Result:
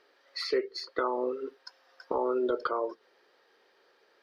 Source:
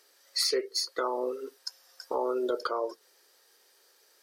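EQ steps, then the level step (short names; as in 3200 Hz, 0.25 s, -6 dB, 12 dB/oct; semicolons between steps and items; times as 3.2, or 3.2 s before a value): air absorption 340 m; dynamic EQ 580 Hz, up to -5 dB, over -40 dBFS, Q 0.77; low shelf 150 Hz +4.5 dB; +5.0 dB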